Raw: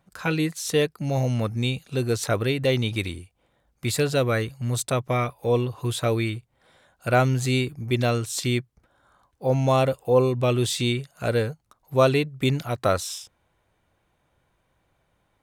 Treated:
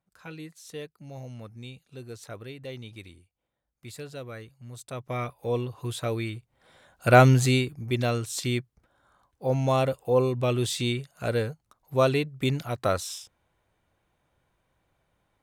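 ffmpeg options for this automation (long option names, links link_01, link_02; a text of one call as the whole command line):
ffmpeg -i in.wav -af "volume=5dB,afade=type=in:start_time=4.83:duration=0.43:silence=0.281838,afade=type=in:start_time=6.33:duration=0.96:silence=0.281838,afade=type=out:start_time=7.29:duration=0.37:silence=0.375837" out.wav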